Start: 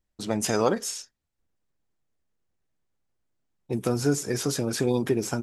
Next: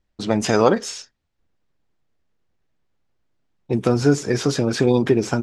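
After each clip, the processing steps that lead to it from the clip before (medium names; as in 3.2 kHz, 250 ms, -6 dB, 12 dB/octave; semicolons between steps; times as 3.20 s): low-pass 4.9 kHz 12 dB/octave; trim +7.5 dB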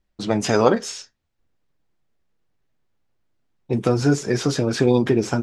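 flange 0.47 Hz, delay 5 ms, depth 4.7 ms, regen -64%; trim +3.5 dB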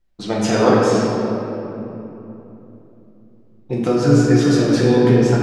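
simulated room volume 170 m³, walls hard, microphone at 0.84 m; trim -2.5 dB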